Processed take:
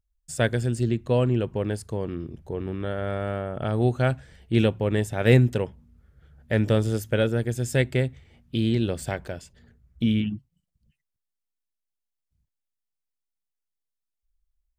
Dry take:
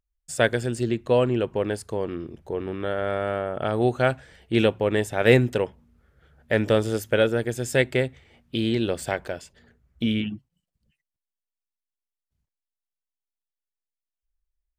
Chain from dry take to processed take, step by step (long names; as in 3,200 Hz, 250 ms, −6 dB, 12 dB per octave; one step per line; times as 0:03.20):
bass and treble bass +10 dB, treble +3 dB
level −4.5 dB